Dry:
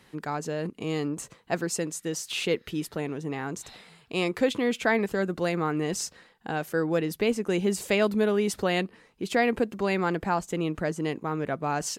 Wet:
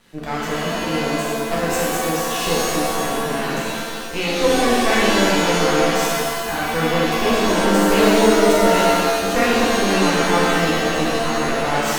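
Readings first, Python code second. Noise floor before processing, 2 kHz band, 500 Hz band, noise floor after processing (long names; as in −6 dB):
−60 dBFS, +11.5 dB, +9.5 dB, −26 dBFS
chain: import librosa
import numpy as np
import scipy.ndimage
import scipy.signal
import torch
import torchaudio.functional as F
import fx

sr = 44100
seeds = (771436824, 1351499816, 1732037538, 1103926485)

y = np.maximum(x, 0.0)
y = fx.rev_shimmer(y, sr, seeds[0], rt60_s=1.7, semitones=7, shimmer_db=-2, drr_db=-6.5)
y = F.gain(torch.from_numpy(y), 3.5).numpy()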